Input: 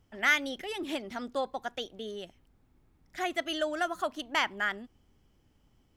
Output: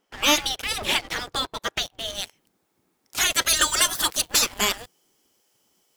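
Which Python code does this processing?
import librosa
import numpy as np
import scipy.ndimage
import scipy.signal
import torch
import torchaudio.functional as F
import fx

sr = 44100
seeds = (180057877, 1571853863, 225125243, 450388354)

y = fx.bass_treble(x, sr, bass_db=4, treble_db=fx.steps((0.0, 0.0), (2.14, 9.0), (3.4, 15.0)))
y = fx.spec_gate(y, sr, threshold_db=-15, keep='weak')
y = fx.leveller(y, sr, passes=3)
y = F.gain(torch.from_numpy(y), 8.5).numpy()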